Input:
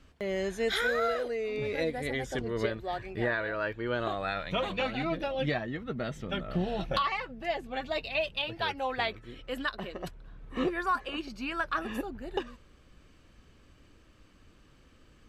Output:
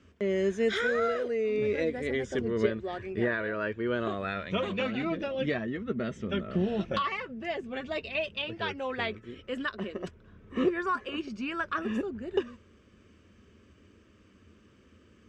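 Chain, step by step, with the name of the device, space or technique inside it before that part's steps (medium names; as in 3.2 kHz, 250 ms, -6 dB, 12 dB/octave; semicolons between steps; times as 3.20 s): car door speaker (cabinet simulation 83–7400 Hz, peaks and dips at 85 Hz +9 dB, 150 Hz -6 dB, 210 Hz +9 dB, 400 Hz +7 dB, 800 Hz -9 dB, 4.2 kHz -9 dB)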